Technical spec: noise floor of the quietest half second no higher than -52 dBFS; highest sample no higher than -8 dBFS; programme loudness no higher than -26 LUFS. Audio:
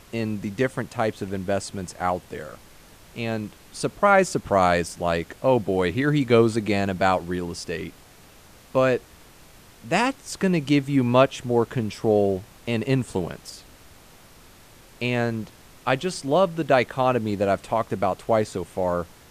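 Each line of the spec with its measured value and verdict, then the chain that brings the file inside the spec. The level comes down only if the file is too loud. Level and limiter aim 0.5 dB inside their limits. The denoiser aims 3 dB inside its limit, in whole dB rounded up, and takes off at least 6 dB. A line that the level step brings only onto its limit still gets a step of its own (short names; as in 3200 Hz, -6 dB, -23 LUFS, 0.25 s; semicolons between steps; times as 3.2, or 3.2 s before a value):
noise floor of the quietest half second -50 dBFS: fail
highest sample -3.5 dBFS: fail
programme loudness -23.5 LUFS: fail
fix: gain -3 dB; limiter -8.5 dBFS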